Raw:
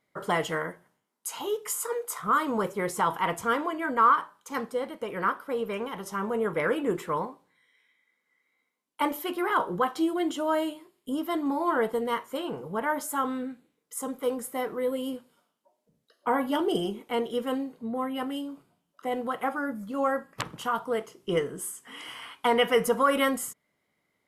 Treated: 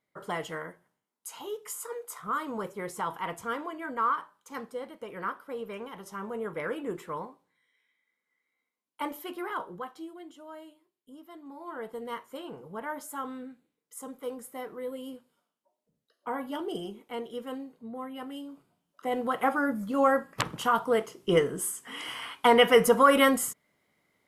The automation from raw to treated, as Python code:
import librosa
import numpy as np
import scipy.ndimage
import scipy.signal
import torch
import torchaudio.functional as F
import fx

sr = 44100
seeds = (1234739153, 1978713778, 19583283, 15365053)

y = fx.gain(x, sr, db=fx.line((9.4, -7.0), (10.28, -19.0), (11.42, -19.0), (12.11, -8.0), (18.21, -8.0), (19.5, 3.5)))